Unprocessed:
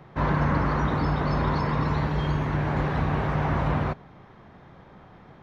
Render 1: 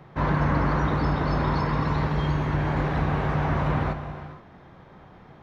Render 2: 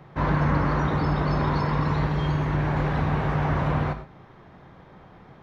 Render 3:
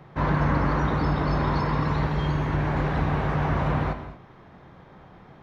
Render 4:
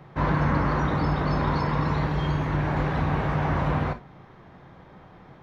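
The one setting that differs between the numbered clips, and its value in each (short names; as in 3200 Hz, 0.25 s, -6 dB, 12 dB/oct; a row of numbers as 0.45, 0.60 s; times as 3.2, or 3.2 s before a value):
non-linear reverb, gate: 500, 140, 250, 80 ms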